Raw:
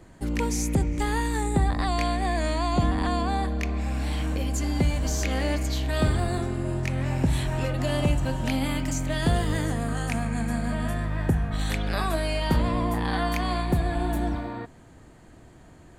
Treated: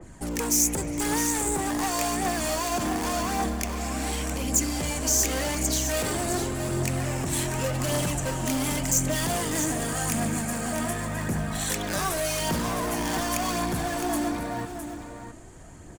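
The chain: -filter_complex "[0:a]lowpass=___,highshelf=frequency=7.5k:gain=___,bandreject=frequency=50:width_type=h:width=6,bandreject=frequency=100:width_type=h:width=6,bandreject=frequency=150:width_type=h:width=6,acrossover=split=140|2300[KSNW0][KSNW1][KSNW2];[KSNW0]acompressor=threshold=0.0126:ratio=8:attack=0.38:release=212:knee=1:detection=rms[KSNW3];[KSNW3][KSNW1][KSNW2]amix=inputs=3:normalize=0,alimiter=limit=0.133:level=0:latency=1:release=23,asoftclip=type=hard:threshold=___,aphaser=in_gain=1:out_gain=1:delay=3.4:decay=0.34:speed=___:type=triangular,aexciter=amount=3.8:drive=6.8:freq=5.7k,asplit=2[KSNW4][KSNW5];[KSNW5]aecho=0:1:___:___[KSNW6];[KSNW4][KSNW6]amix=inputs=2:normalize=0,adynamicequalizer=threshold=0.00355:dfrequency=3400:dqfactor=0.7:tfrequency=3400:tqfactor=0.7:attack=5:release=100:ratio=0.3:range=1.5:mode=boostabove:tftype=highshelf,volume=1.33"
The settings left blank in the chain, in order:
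10k, -7.5, 0.0355, 0.88, 661, 0.376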